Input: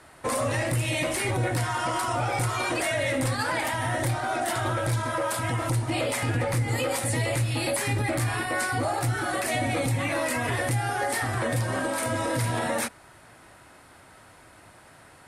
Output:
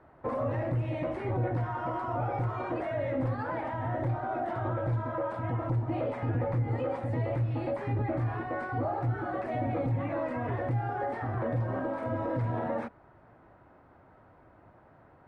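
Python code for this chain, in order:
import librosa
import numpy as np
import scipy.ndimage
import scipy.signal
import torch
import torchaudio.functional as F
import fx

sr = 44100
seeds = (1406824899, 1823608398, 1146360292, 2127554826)

y = scipy.signal.sosfilt(scipy.signal.butter(2, 1000.0, 'lowpass', fs=sr, output='sos'), x)
y = y * 10.0 ** (-3.0 / 20.0)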